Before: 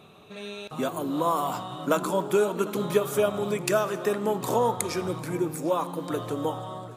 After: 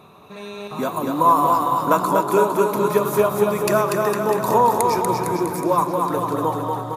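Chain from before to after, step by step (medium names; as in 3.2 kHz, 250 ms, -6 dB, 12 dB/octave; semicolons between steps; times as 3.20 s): graphic EQ with 31 bands 1 kHz +10 dB, 3.15 kHz -9 dB, 8 kHz -5 dB, 12.5 kHz +5 dB; bouncing-ball echo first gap 240 ms, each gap 0.9×, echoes 5; trim +3.5 dB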